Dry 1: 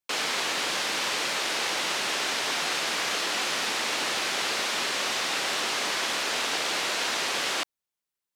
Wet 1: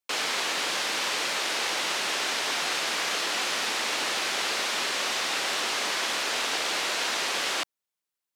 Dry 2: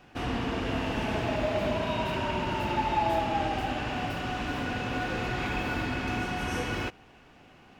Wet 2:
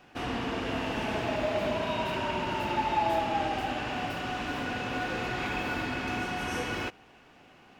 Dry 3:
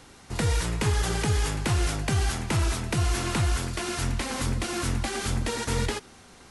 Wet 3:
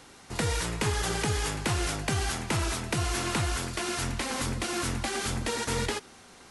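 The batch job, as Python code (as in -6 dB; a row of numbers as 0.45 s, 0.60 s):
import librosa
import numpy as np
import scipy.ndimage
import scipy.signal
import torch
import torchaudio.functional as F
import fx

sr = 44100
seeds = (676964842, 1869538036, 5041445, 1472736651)

y = fx.low_shelf(x, sr, hz=150.0, db=-8.0)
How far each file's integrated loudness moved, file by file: 0.0 LU, -1.0 LU, -2.5 LU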